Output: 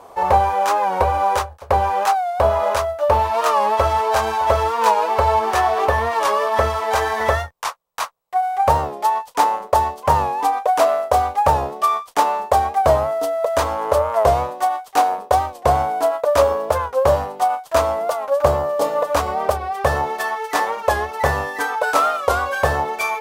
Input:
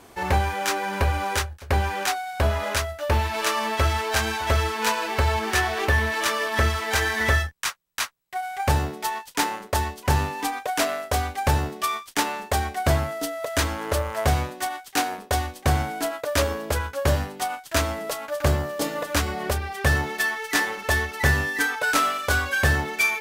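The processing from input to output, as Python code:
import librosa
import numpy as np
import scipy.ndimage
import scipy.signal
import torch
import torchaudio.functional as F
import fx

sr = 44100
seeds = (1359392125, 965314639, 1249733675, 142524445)

y = fx.band_shelf(x, sr, hz=740.0, db=14.0, octaves=1.7)
y = fx.record_warp(y, sr, rpm=45.0, depth_cents=100.0)
y = F.gain(torch.from_numpy(y), -3.0).numpy()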